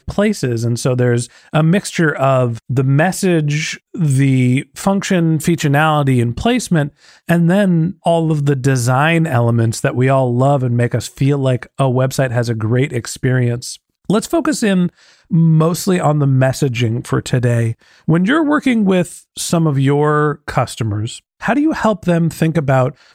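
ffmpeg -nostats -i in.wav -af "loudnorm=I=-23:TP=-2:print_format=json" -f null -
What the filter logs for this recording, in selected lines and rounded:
"input_i" : "-15.6",
"input_tp" : "-1.3",
"input_lra" : "2.4",
"input_thresh" : "-25.7",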